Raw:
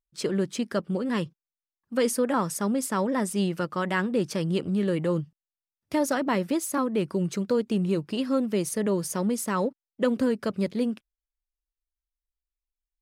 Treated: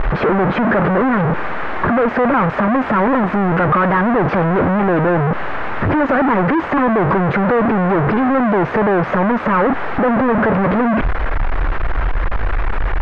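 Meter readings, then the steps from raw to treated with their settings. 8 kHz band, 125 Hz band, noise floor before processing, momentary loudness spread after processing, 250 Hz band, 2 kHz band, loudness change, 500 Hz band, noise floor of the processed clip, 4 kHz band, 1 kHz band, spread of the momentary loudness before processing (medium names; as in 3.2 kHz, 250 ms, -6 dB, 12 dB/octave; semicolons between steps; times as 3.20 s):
under -20 dB, +13.5 dB, under -85 dBFS, 8 LU, +10.5 dB, +17.0 dB, +11.0 dB, +11.0 dB, -23 dBFS, +2.0 dB, +17.5 dB, 4 LU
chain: one-bit comparator; low-pass 1.7 kHz 24 dB/octave; bass shelf 330 Hz -7 dB; loudness maximiser +29.5 dB; trim -7.5 dB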